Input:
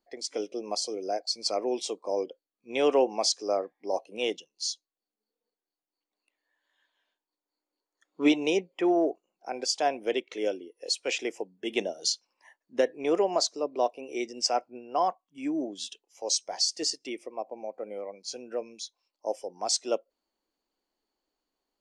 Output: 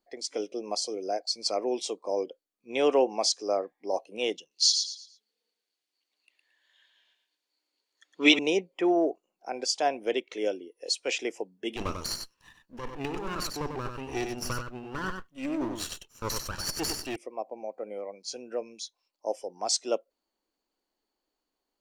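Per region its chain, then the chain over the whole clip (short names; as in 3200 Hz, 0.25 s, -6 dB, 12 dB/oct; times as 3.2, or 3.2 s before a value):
4.51–8.39 weighting filter D + feedback echo 0.112 s, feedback 31%, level -6 dB
11.76–17.16 minimum comb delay 0.7 ms + negative-ratio compressor -32 dBFS + echo 95 ms -6 dB
whole clip: dry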